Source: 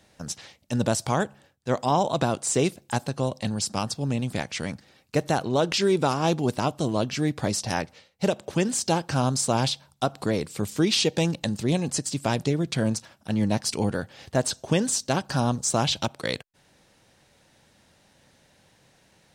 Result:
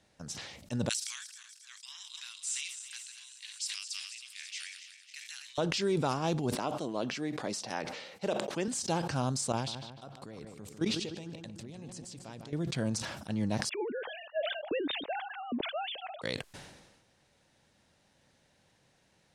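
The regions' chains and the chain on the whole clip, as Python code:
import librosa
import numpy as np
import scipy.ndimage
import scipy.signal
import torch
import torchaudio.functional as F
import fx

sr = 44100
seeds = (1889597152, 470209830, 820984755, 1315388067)

y = fx.chain(x, sr, fx.reverse_delay_fb(ms=136, feedback_pct=76, wet_db=-10.0),
    fx.cheby2_highpass(hz=640.0, order=4, stop_db=60), at=(0.89, 5.58))
y = fx.chain(y, sr, fx.highpass(hz=250.0, slope=12),
    fx.high_shelf(hz=4900.0, db=-6.0), at=(6.55, 8.68))
y = fx.chain(y, sr, fx.level_steps(step_db=19),
    fx.echo_filtered(ms=150, feedback_pct=55, hz=2700.0, wet_db=-7.0), at=(9.52, 12.53))
y = fx.chain(y, sr, fx.sine_speech(),
    fx.peak_eq(hz=1100.0, db=-8.5, octaves=2.0), at=(13.69, 16.22))
y = scipy.signal.sosfilt(scipy.signal.butter(2, 11000.0, 'lowpass', fs=sr, output='sos'), y)
y = fx.sustainer(y, sr, db_per_s=46.0)
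y = y * 10.0 ** (-8.5 / 20.0)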